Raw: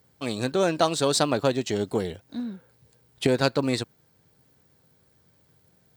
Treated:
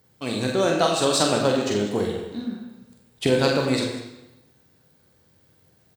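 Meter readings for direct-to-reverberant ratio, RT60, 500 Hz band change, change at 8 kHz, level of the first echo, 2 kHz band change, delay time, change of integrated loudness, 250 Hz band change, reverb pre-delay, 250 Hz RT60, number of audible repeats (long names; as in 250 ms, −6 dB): −0.5 dB, 0.95 s, +3.0 dB, +3.0 dB, −6.5 dB, +3.5 dB, 45 ms, +3.0 dB, +3.0 dB, 28 ms, 0.95 s, 1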